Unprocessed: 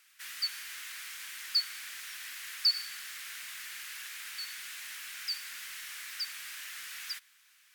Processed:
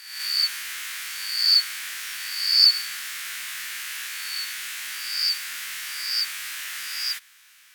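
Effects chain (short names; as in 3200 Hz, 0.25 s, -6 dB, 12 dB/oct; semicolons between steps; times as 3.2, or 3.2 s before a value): spectral swells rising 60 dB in 0.87 s; gain +7.5 dB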